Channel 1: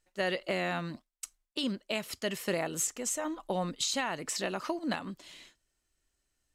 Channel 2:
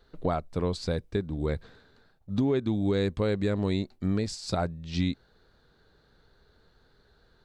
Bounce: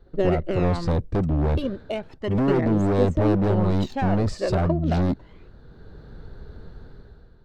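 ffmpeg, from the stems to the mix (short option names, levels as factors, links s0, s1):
-filter_complex "[0:a]equalizer=f=370:t=o:w=1.2:g=10.5,adynamicsmooth=sensitivity=2.5:basefreq=1800,aphaser=in_gain=1:out_gain=1:delay=1.9:decay=0.6:speed=0.33:type=triangular,volume=1.26[s0];[1:a]lowshelf=f=360:g=11.5,dynaudnorm=f=170:g=7:m=4.47,asoftclip=type=hard:threshold=0.112,volume=1[s1];[s0][s1]amix=inputs=2:normalize=0,highshelf=f=2300:g=-10.5"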